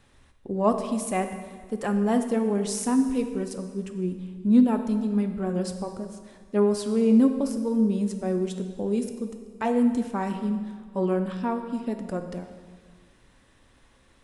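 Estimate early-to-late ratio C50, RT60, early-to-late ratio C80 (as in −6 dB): 8.0 dB, 1.7 s, 9.5 dB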